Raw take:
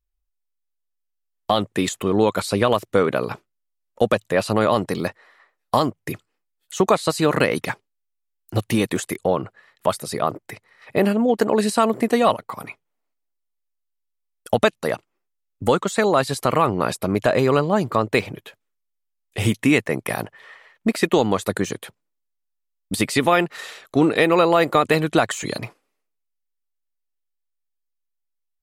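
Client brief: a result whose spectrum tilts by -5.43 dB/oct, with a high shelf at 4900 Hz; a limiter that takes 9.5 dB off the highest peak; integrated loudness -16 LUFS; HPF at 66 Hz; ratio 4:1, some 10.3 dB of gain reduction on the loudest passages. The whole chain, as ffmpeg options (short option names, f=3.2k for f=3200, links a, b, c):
-af "highpass=66,highshelf=f=4.9k:g=-8.5,acompressor=threshold=-25dB:ratio=4,volume=16.5dB,alimiter=limit=-2dB:level=0:latency=1"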